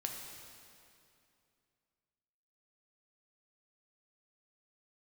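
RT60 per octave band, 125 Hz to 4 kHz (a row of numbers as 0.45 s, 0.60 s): 2.9 s, 2.9 s, 2.7 s, 2.5 s, 2.4 s, 2.2 s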